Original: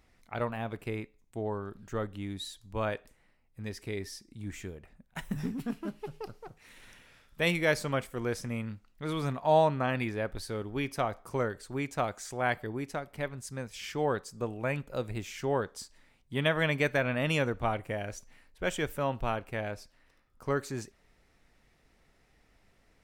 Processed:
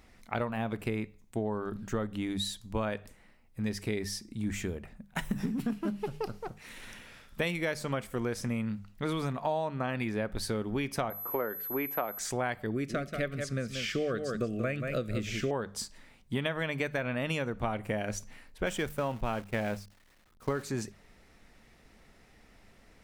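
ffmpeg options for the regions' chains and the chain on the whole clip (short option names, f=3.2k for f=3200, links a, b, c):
-filter_complex "[0:a]asettb=1/sr,asplit=3[a][b][c];[a]atrim=end=11.104[d];[b]atrim=start=11.1:end=12.19,asetpts=PTS-STARTPTS,afade=t=in:d=0.004:c=qsin,afade=t=out:st=1.086:d=0.004:c=qsin,acrossover=split=270 2600:gain=0.126 1 0.0891[e][f][g];[e][f][g]amix=inputs=3:normalize=0,aeval=exprs='val(0)+0.00794*sin(2*PI*12000*n/s)':c=same[h];[c]atrim=start=12.186[i];[d][h]acrossfade=d=0.004:c1=hsin:c2=qsin[j];[j][i]acrossfade=d=0.004:c1=qsin:c2=hsin,asettb=1/sr,asplit=3[k][l][m];[k]atrim=end=12.714[n];[l]atrim=start=12.71:end=15.51,asetpts=PTS-STARTPTS,afade=t=in:d=0.004:c=qsin,afade=t=out:st=2.796:d=0.004:c=qsin,acrossover=split=5900[o][p];[p]acompressor=threshold=-59dB:ratio=4:attack=1:release=60[q];[o][q]amix=inputs=2:normalize=0,asuperstop=centerf=890:order=8:qfactor=2.1,aecho=1:1:183:0.355,atrim=end_sample=123480[r];[m]atrim=start=15.506[s];[n][r]acrossfade=d=0.004:c1=hsin:c2=qsin[t];[t][s]acrossfade=d=0.004:c1=qsin:c2=hsin,asettb=1/sr,asplit=3[u][v][w];[u]atrim=end=18.664[x];[v]atrim=start=18.66:end=20.63,asetpts=PTS-STARTPTS,afade=t=in:d=0.004:c=qsin,afade=t=out:st=1.966:d=0.004:c=qsin,aeval=exprs='val(0)+0.5*0.00891*sgn(val(0))':c=same,agate=range=-33dB:threshold=-34dB:ratio=3:release=100:detection=peak[y];[w]atrim=start=20.626[z];[x][y]acrossfade=d=0.004:c1=hsin:c2=qsin[aa];[aa][z]acrossfade=d=0.004:c1=qsin:c2=hsin,equalizer=f=210:t=o:w=0.24:g=6.5,bandreject=f=50:t=h:w=6,bandreject=f=100:t=h:w=6,bandreject=f=150:t=h:w=6,bandreject=f=200:t=h:w=6,acompressor=threshold=-35dB:ratio=10,volume=7dB"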